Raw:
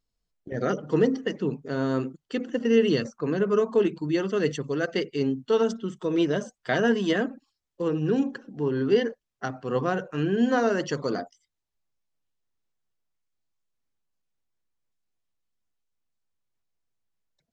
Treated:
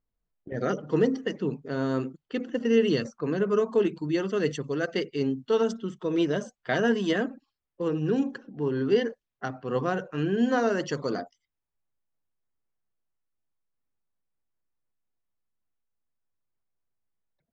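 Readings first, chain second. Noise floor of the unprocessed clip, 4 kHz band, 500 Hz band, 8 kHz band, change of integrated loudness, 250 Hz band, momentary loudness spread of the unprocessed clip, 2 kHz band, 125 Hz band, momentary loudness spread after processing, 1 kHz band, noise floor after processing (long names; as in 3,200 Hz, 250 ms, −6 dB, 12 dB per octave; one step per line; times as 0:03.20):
−83 dBFS, −1.5 dB, −1.5 dB, can't be measured, −1.5 dB, −1.5 dB, 9 LU, −1.5 dB, −1.5 dB, 9 LU, −1.5 dB, −85 dBFS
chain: low-pass that shuts in the quiet parts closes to 1,900 Hz, open at −22 dBFS
level −1.5 dB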